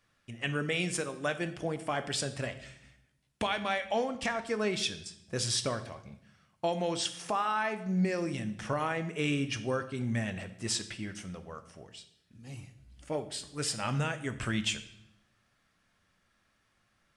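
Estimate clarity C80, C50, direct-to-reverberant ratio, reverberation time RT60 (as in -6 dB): 16.0 dB, 13.5 dB, 9.0 dB, 0.75 s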